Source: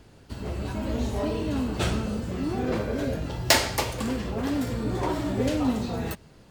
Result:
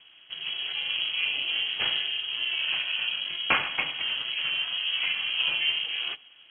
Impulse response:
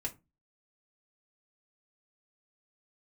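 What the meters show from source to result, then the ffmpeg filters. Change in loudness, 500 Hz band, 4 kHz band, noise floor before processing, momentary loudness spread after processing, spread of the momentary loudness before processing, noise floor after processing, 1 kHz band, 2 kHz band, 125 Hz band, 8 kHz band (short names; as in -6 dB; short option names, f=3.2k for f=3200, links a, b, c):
+1.0 dB, -18.0 dB, +9.5 dB, -52 dBFS, 6 LU, 11 LU, -54 dBFS, -6.0 dB, +6.5 dB, -26.0 dB, under -40 dB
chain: -filter_complex "[0:a]lowpass=f=2.7k:t=q:w=0.5098,lowpass=f=2.7k:t=q:w=0.6013,lowpass=f=2.7k:t=q:w=0.9,lowpass=f=2.7k:t=q:w=2.563,afreqshift=-3200,asplit=2[a][b];[1:a]atrim=start_sample=2205[c];[b][c]afir=irnorm=-1:irlink=0,volume=-9.5dB[d];[a][d]amix=inputs=2:normalize=0,aeval=exprs='val(0)*sin(2*PI*160*n/s)':c=same,equalizer=f=150:t=o:w=0.51:g=5.5" -ar 48000 -c:a libopus -b:a 64k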